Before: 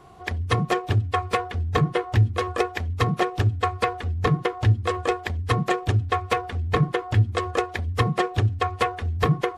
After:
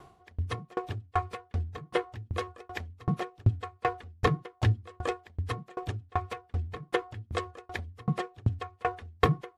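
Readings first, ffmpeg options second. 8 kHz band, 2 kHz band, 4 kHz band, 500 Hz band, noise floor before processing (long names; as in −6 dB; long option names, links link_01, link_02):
−11.0 dB, −9.5 dB, −10.0 dB, −9.0 dB, −39 dBFS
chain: -af "aeval=exprs='val(0)*pow(10,-34*if(lt(mod(2.6*n/s,1),2*abs(2.6)/1000),1-mod(2.6*n/s,1)/(2*abs(2.6)/1000),(mod(2.6*n/s,1)-2*abs(2.6)/1000)/(1-2*abs(2.6)/1000))/20)':channel_layout=same"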